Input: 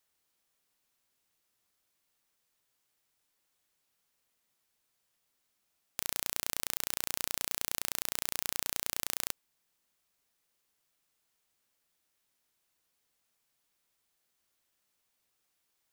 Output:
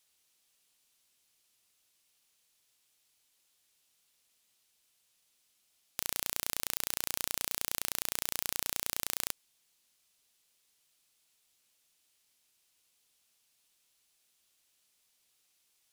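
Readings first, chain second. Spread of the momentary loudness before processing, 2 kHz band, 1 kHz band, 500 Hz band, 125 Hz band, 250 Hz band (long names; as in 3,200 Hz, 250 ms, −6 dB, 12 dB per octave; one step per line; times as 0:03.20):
3 LU, 0.0 dB, 0.0 dB, 0.0 dB, 0.0 dB, 0.0 dB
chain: noise in a band 2,400–13,000 Hz −75 dBFS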